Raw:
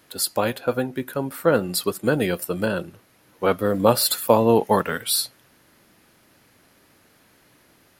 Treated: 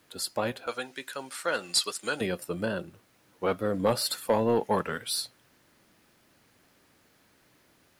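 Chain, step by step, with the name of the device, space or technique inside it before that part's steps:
0:00.67–0:02.21: meter weighting curve ITU-R 468
compact cassette (soft clipping −8 dBFS, distortion −17 dB; low-pass filter 9,400 Hz 12 dB per octave; tape wow and flutter; white noise bed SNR 40 dB)
level −6.5 dB

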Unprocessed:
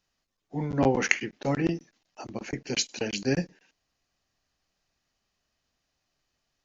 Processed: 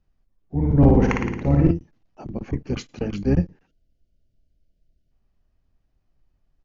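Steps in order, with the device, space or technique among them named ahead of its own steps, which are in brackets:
0:03.68–0:05.11: gain on a spectral selection 710–2,700 Hz −29 dB
octave pedal (pitch-shifted copies added −12 semitones −9 dB)
spectral tilt −4.5 dB per octave
0:00.57–0:01.71: flutter between parallel walls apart 9.6 metres, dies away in 0.97 s
level −2.5 dB

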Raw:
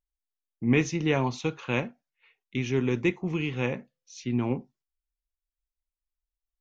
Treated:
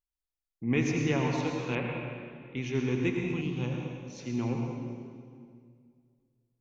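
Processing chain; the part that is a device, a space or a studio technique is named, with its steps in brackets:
stairwell (convolution reverb RT60 2.1 s, pre-delay 77 ms, DRR 0.5 dB)
0:01.75–0:02.57: low-pass filter 3,400 Hz 24 dB per octave
0:03.41–0:04.19: octave-band graphic EQ 500/2,000/4,000 Hz −5/−11/+3 dB
level −5.5 dB

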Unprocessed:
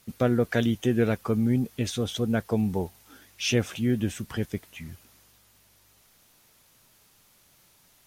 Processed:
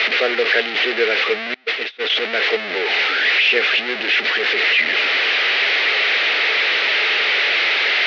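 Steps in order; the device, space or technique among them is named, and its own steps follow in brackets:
digital answering machine (band-pass filter 360–3,200 Hz; linear delta modulator 32 kbit/s, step −23.5 dBFS; loudspeaker in its box 430–3,600 Hz, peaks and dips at 430 Hz +8 dB, 1,000 Hz −7 dB, 2,000 Hz +5 dB, 3,300 Hz −4 dB)
0:01.54–0:02.10: noise gate −29 dBFS, range −28 dB
meter weighting curve D
level +6 dB

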